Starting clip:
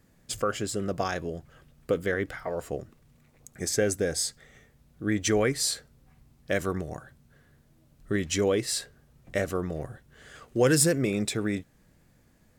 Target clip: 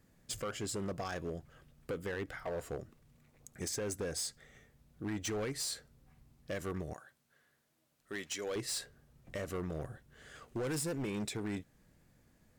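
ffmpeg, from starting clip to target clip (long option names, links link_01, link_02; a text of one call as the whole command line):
ffmpeg -i in.wav -filter_complex "[0:a]asettb=1/sr,asplit=3[link_01][link_02][link_03];[link_01]atrim=end=6.934[link_04];[link_02]atrim=start=6.93:end=8.56,asetpts=PTS-STARTPTS,afade=type=in:duration=0.004:curve=qsin,afade=type=out:start_time=1.626:duration=0.004:curve=qsin,highpass=frequency=950:poles=1[link_05];[link_03]atrim=start=8.556[link_06];[link_04][link_05]acrossfade=duration=0.004:curve1=hsin:curve2=qsin[link_07];[link_07][link_06]acrossfade=duration=0.004:curve1=qsin:curve2=hsin,alimiter=limit=-20dB:level=0:latency=1:release=203,asoftclip=type=hard:threshold=-28dB,volume=-5dB" out.wav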